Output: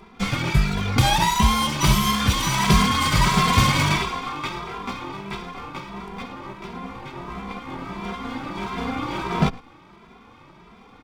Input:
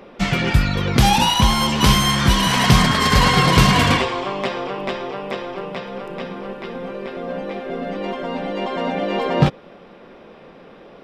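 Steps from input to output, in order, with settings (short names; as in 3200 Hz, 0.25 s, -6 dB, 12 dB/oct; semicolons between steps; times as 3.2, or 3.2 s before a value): minimum comb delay 0.87 ms; outdoor echo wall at 19 m, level -21 dB; endless flanger 2.6 ms +1.5 Hz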